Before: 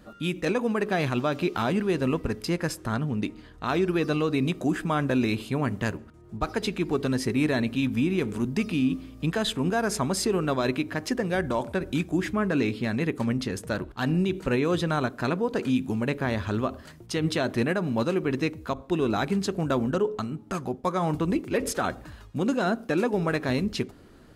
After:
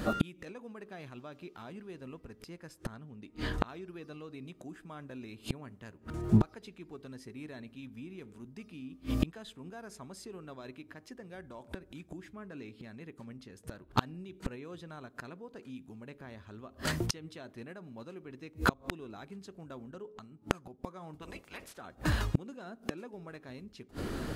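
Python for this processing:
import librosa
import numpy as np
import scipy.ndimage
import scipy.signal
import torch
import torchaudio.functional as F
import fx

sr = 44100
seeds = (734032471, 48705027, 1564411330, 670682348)

y = fx.spec_clip(x, sr, under_db=24, at=(21.21, 21.76), fade=0.02)
y = fx.gate_flip(y, sr, shuts_db=-27.0, range_db=-36)
y = y * 10.0 ** (15.0 / 20.0)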